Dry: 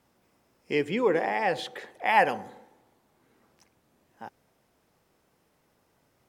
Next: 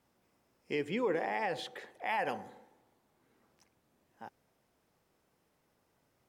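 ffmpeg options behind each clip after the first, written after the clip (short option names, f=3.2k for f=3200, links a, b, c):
-af "alimiter=limit=-17dB:level=0:latency=1:release=58,volume=-6dB"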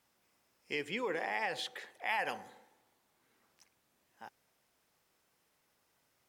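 -af "tiltshelf=f=970:g=-6,volume=-1.5dB"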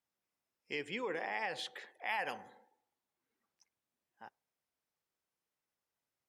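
-af "afftdn=nr=14:nf=-63,volume=-2.5dB"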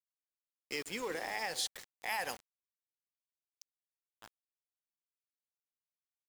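-af "aexciter=amount=4.6:drive=6.7:freq=4.3k,aeval=exprs='val(0)*gte(abs(val(0)),0.00708)':c=same"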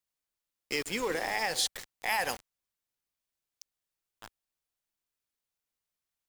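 -af "lowshelf=f=69:g=9.5,volume=6.5dB"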